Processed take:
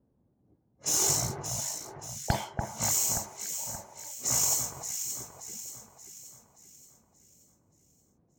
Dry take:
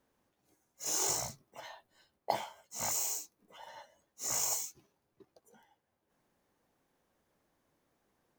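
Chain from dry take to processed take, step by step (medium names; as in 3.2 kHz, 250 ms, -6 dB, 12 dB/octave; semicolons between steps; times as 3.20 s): one-sided wavefolder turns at -26 dBFS; high-pass 58 Hz; tone controls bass +12 dB, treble +5 dB; level-controlled noise filter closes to 560 Hz, open at -30.5 dBFS; echo whose repeats swap between lows and highs 289 ms, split 1.8 kHz, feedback 68%, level -5 dB; trim +3 dB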